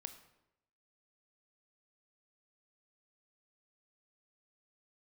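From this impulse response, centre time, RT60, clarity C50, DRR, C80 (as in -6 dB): 10 ms, 0.85 s, 11.0 dB, 8.5 dB, 13.5 dB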